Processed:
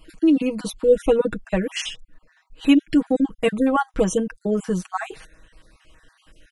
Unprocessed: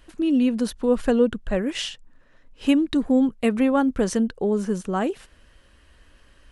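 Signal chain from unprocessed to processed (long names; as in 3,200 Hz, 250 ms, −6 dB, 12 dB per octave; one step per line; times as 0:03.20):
time-frequency cells dropped at random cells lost 39%
comb filter 6.3 ms, depth 82%
level +1.5 dB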